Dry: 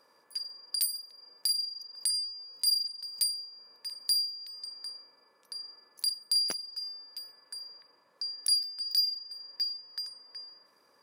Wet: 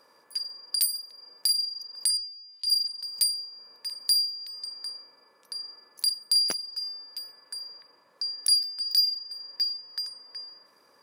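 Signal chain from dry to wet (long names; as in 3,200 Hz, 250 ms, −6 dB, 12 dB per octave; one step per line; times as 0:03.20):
0:02.17–0:02.70: resonant band-pass 3,400 Hz, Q 2.3
level +4.5 dB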